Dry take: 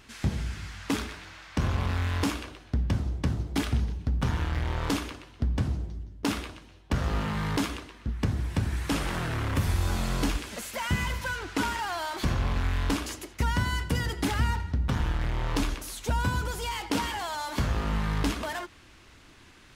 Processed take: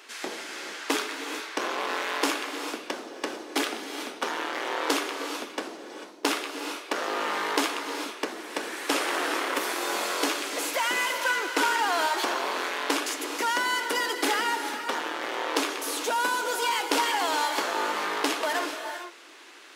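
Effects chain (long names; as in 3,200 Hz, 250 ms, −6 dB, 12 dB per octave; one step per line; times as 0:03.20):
Butterworth high-pass 330 Hz 36 dB per octave
reverb whose tail is shaped and stops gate 470 ms rising, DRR 6 dB
level +6 dB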